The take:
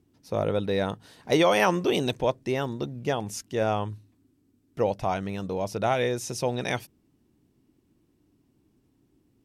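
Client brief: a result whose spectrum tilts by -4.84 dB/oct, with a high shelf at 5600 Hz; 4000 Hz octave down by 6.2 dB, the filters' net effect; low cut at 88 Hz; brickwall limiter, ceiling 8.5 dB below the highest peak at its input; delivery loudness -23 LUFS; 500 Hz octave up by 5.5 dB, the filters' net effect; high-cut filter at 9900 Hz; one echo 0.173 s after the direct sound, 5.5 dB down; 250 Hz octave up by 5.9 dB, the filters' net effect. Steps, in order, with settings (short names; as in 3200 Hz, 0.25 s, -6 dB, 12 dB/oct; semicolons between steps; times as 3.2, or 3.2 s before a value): HPF 88 Hz; LPF 9900 Hz; bell 250 Hz +6.5 dB; bell 500 Hz +5 dB; bell 4000 Hz -7 dB; high shelf 5600 Hz -3.5 dB; limiter -14 dBFS; echo 0.173 s -5.5 dB; gain +2.5 dB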